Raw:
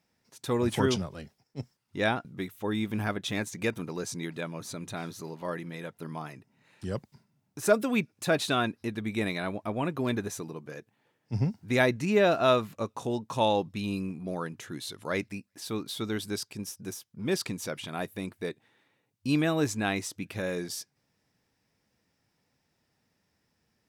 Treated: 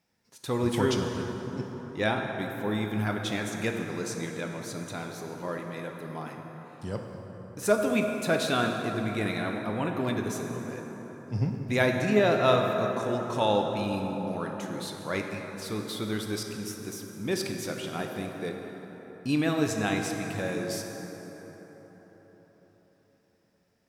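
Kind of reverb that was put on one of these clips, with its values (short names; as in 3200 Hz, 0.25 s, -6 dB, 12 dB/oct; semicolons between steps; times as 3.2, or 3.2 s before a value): plate-style reverb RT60 4.7 s, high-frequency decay 0.45×, DRR 2 dB; gain -1 dB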